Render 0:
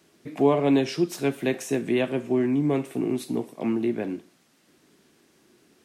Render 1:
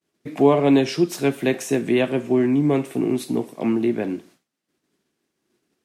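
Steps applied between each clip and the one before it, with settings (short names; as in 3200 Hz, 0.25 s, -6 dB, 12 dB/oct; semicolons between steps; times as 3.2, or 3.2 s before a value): expander -48 dBFS; gain +4.5 dB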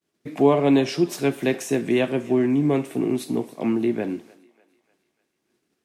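thinning echo 0.298 s, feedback 54%, high-pass 500 Hz, level -21.5 dB; gain -1.5 dB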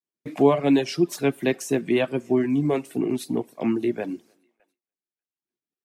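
gate with hold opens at -48 dBFS; reverb removal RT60 0.98 s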